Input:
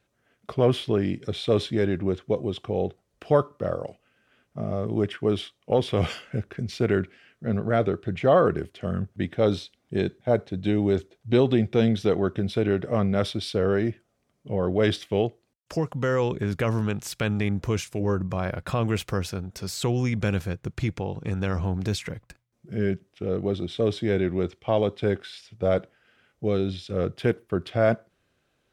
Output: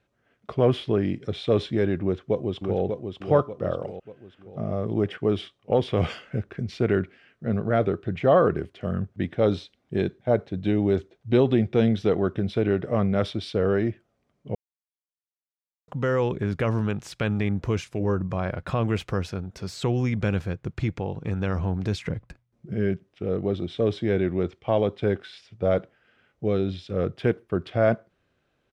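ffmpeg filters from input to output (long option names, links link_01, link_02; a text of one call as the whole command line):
ffmpeg -i in.wav -filter_complex "[0:a]asplit=2[link_01][link_02];[link_02]afade=type=in:start_time=2.02:duration=0.01,afade=type=out:start_time=2.81:duration=0.01,aecho=0:1:590|1180|1770|2360|2950:0.530884|0.238898|0.107504|0.0483768|0.0217696[link_03];[link_01][link_03]amix=inputs=2:normalize=0,asettb=1/sr,asplit=3[link_04][link_05][link_06];[link_04]atrim=end=22.064[link_07];[link_05]atrim=start=22.06:end=22.74,asetpts=PTS-STARTPTS,afade=type=in:duration=0.004:curve=qsin,afade=type=out:start_time=0.676:duration=0.004:curve=qsin,lowshelf=frequency=440:gain=6.5[link_08];[link_06]atrim=start=22.736[link_09];[link_07][link_08]acrossfade=duration=0.004:curve1=hsin:curve2=qsin[link_10];[link_10][link_09]acrossfade=duration=0.004:curve1=qsin:curve2=hsin,asplit=3[link_11][link_12][link_13];[link_11]atrim=end=14.55,asetpts=PTS-STARTPTS,afade=type=out:start_time=14.546:duration=0.004:curve=hsin[link_14];[link_12]atrim=start=14.55:end=15.88,asetpts=PTS-STARTPTS,volume=0[link_15];[link_13]atrim=start=15.88,asetpts=PTS-STARTPTS,afade=type=in:duration=0.004:curve=hsin[link_16];[link_14][link_15][link_16]concat=n=3:v=0:a=1,aemphasis=mode=reproduction:type=50fm" out.wav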